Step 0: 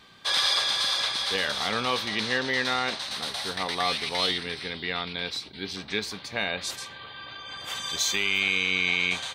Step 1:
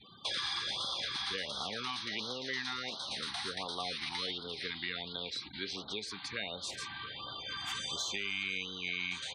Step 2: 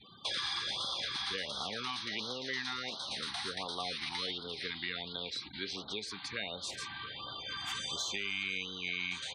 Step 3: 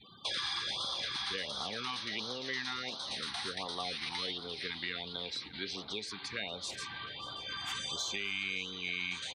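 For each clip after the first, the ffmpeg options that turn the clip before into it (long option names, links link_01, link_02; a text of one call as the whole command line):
ffmpeg -i in.wav -filter_complex "[0:a]acrossover=split=340|3100[link_01][link_02][link_03];[link_01]acompressor=threshold=-51dB:ratio=4[link_04];[link_02]acompressor=threshold=-39dB:ratio=4[link_05];[link_03]acompressor=threshold=-42dB:ratio=4[link_06];[link_04][link_05][link_06]amix=inputs=3:normalize=0,afftfilt=real='re*gte(hypot(re,im),0.00316)':imag='im*gte(hypot(re,im),0.00316)':win_size=1024:overlap=0.75,afftfilt=real='re*(1-between(b*sr/1024,480*pow(2200/480,0.5+0.5*sin(2*PI*1.4*pts/sr))/1.41,480*pow(2200/480,0.5+0.5*sin(2*PI*1.4*pts/sr))*1.41))':imag='im*(1-between(b*sr/1024,480*pow(2200/480,0.5+0.5*sin(2*PI*1.4*pts/sr))/1.41,480*pow(2200/480,0.5+0.5*sin(2*PI*1.4*pts/sr))*1.41))':win_size=1024:overlap=0.75" out.wav
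ffmpeg -i in.wav -af anull out.wav
ffmpeg -i in.wav -af "aecho=1:1:585|1170|1755|2340:0.112|0.0572|0.0292|0.0149" out.wav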